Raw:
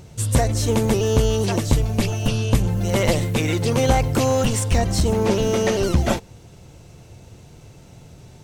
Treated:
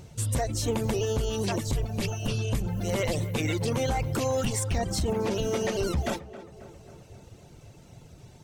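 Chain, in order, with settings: reverb removal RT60 0.82 s; peak limiter -15.5 dBFS, peak gain reduction 9 dB; tape echo 268 ms, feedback 69%, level -13.5 dB, low-pass 2 kHz; trim -3.5 dB

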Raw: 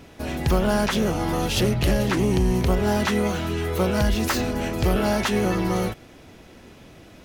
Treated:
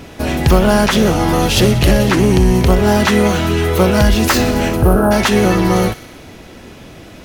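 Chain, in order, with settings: spectral selection erased 4.77–5.12 s, 1.7–8.6 kHz; in parallel at -2.5 dB: gain riding within 4 dB 0.5 s; on the sum: feedback echo behind a high-pass 61 ms, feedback 74%, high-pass 1.4 kHz, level -14 dB; trim +5 dB

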